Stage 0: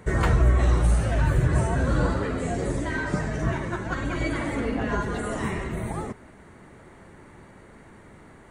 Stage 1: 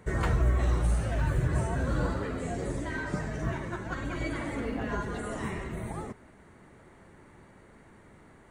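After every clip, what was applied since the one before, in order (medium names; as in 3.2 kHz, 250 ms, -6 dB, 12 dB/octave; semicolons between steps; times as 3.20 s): short-mantissa float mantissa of 6-bit; trim -6 dB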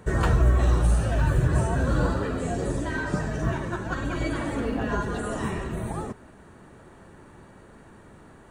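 band-stop 2.1 kHz, Q 5.6; trim +5.5 dB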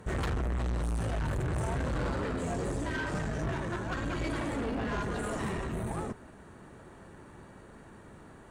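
valve stage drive 29 dB, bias 0.45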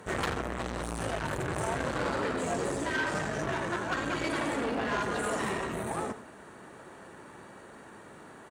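high-pass 400 Hz 6 dB/octave; echo from a far wall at 15 m, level -12 dB; trim +5.5 dB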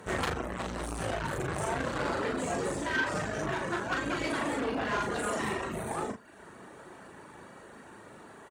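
reverb removal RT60 0.65 s; doubling 38 ms -5 dB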